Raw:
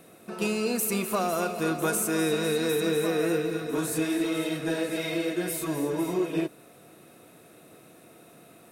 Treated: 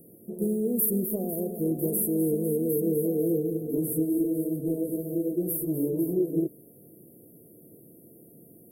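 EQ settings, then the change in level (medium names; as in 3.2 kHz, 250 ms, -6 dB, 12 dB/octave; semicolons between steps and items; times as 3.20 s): inverse Chebyshev band-stop 1.3–5.4 kHz, stop band 60 dB; bass shelf 430 Hz +3 dB; treble shelf 2.4 kHz +8.5 dB; 0.0 dB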